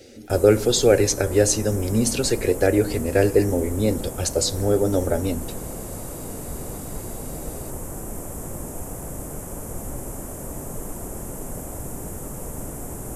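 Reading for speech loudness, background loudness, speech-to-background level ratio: −21.0 LKFS, −33.5 LKFS, 12.5 dB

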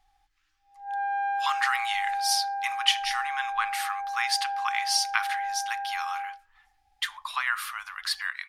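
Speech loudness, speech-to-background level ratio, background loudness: −29.0 LKFS, 2.5 dB, −31.5 LKFS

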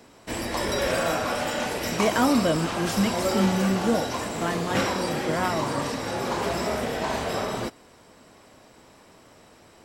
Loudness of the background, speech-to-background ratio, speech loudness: −27.5 LKFS, 1.0 dB, −26.5 LKFS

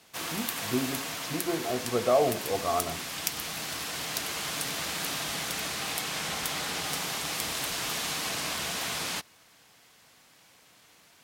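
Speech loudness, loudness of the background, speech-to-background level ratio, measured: −30.5 LKFS, −31.5 LKFS, 1.0 dB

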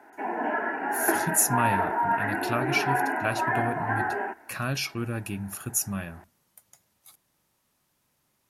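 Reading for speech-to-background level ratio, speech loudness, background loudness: −2.0 dB, −29.5 LKFS, −27.5 LKFS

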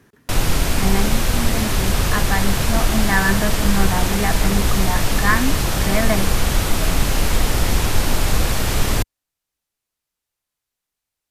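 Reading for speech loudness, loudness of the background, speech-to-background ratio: −23.5 LKFS, −20.5 LKFS, −3.0 dB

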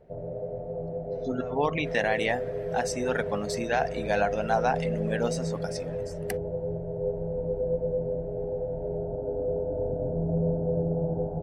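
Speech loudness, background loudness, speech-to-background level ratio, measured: −29.5 LKFS, −31.5 LKFS, 2.0 dB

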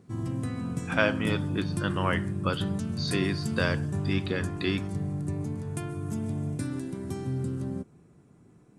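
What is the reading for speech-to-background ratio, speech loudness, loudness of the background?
1.5 dB, −31.0 LKFS, −32.5 LKFS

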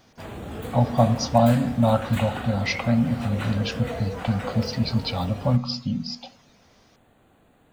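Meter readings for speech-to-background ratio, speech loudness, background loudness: 11.0 dB, −24.0 LKFS, −35.0 LKFS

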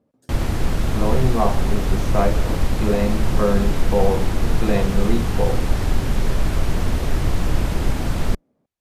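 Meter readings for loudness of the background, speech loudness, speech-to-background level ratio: −24.0 LKFS, −24.0 LKFS, 0.0 dB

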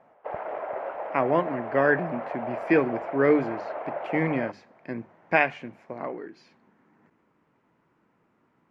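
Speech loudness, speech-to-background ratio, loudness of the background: −26.5 LKFS, 8.0 dB, −34.5 LKFS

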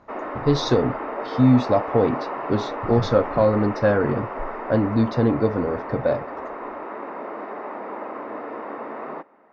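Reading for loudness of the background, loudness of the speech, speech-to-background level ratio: −31.5 LKFS, −22.0 LKFS, 9.5 dB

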